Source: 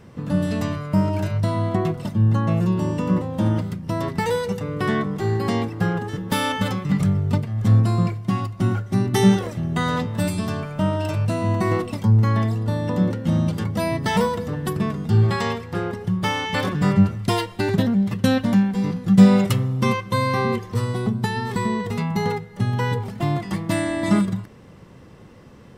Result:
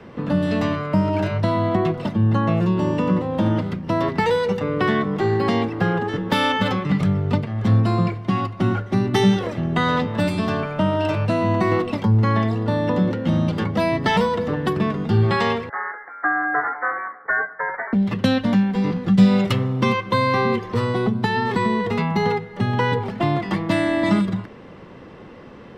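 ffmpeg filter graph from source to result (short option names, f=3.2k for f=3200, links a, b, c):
-filter_complex "[0:a]asettb=1/sr,asplit=3[a][b][c];[a]atrim=end=15.694[d];[b]atrim=start=15.69:end=17.93,asetpts=PTS-STARTPTS,afade=t=in:d=0.004:c=qsin,afade=t=out:st=2.236:d=0.004:c=qsin,highpass=f=760:w=0.5412,highpass=f=760:w=1.3066,lowpass=f=2.1k:t=q:w=0.5098,lowpass=f=2.1k:t=q:w=0.6013,lowpass=f=2.1k:t=q:w=0.9,lowpass=f=2.1k:t=q:w=2.563,afreqshift=-2500,asplit=2[e][f];[f]adelay=16,volume=-12dB[g];[e][g]amix=inputs=2:normalize=0,atrim=end_sample=98784[h];[c]atrim=start=17.926[i];[d][h]acrossfade=d=0.004:c1=hsin:c2=qsin[j];[j][i]acrossfade=d=0.004:c1=qsin:c2=hsin,lowshelf=f=96:g=11.5,acrossover=split=170|3000[k][l][m];[l]acompressor=threshold=-24dB:ratio=4[n];[k][n][m]amix=inputs=3:normalize=0,acrossover=split=220 4200:gain=0.158 1 0.112[o][p][q];[o][p][q]amix=inputs=3:normalize=0,volume=7.5dB"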